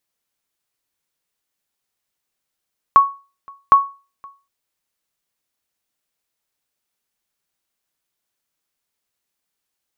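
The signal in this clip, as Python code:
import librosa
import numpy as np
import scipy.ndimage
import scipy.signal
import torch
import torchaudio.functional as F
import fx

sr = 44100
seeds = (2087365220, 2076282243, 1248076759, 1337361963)

y = fx.sonar_ping(sr, hz=1110.0, decay_s=0.32, every_s=0.76, pings=2, echo_s=0.52, echo_db=-29.0, level_db=-2.0)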